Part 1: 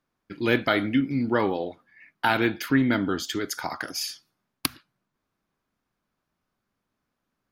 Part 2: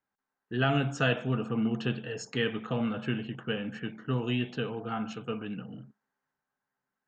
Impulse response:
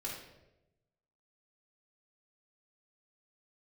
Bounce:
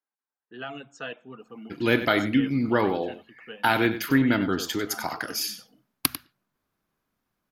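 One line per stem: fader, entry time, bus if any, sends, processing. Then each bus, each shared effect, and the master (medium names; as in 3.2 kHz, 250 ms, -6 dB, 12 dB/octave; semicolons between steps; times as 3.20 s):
+0.5 dB, 1.40 s, no send, echo send -12.5 dB, peaking EQ 12 kHz +9.5 dB 0.22 oct
-7.5 dB, 0.00 s, no send, no echo send, high-pass 290 Hz 12 dB/octave; reverb removal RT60 0.9 s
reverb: none
echo: delay 96 ms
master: none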